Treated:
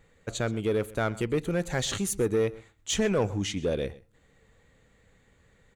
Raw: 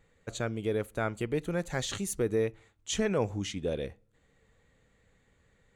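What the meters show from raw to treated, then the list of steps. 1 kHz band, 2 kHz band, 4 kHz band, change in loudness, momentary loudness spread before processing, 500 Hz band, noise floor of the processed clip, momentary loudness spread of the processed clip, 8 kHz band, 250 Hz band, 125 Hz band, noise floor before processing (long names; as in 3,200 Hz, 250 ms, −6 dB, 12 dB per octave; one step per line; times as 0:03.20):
+3.0 dB, +3.5 dB, +4.5 dB, +3.5 dB, 7 LU, +3.5 dB, −64 dBFS, 6 LU, +4.5 dB, +4.0 dB, +4.0 dB, −69 dBFS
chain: in parallel at −10 dB: wave folding −28.5 dBFS
on the sum: single-tap delay 127 ms −20.5 dB
level +2.5 dB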